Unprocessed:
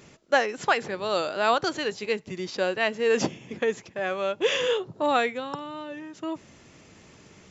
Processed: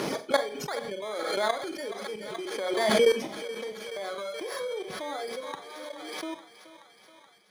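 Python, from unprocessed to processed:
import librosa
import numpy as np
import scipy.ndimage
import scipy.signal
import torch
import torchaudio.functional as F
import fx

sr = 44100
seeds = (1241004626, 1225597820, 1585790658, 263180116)

p1 = fx.bit_reversed(x, sr, seeds[0], block=16)
p2 = fx.hum_notches(p1, sr, base_hz=60, count=8)
p3 = fx.dereverb_blind(p2, sr, rt60_s=1.4)
p4 = scipy.signal.sosfilt(scipy.signal.butter(2, 290.0, 'highpass', fs=sr, output='sos'), p3)
p5 = fx.dereverb_blind(p4, sr, rt60_s=0.69)
p6 = fx.hpss(p5, sr, part='harmonic', gain_db=5)
p7 = fx.level_steps(p6, sr, step_db=17)
p8 = fx.air_absorb(p7, sr, metres=85.0)
p9 = p8 + fx.echo_thinned(p8, sr, ms=426, feedback_pct=80, hz=510.0, wet_db=-13, dry=0)
p10 = fx.rev_schroeder(p9, sr, rt60_s=0.33, comb_ms=30, drr_db=8.5)
y = fx.pre_swell(p10, sr, db_per_s=30.0)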